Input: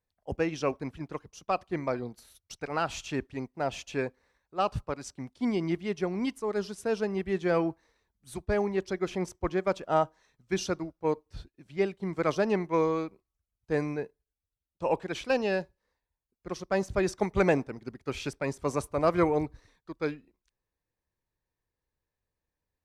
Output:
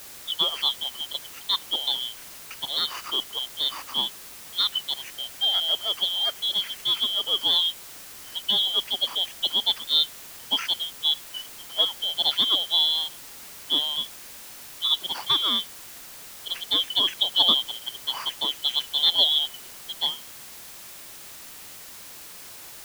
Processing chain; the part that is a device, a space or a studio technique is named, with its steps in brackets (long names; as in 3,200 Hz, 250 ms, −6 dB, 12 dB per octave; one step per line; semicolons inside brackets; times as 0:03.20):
split-band scrambled radio (band-splitting scrambler in four parts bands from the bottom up 2413; band-pass filter 330–3,400 Hz; white noise bed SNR 15 dB)
level +7 dB